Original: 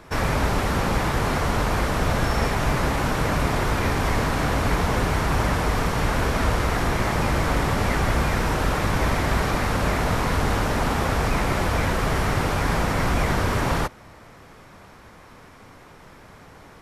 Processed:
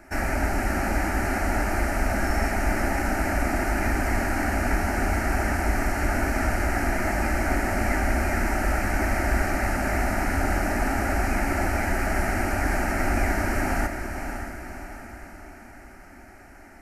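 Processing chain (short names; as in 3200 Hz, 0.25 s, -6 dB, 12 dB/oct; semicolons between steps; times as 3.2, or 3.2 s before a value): fixed phaser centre 710 Hz, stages 8; diffused feedback echo 0.567 s, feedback 50%, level -7.5 dB; on a send at -15.5 dB: reverb RT60 0.70 s, pre-delay 60 ms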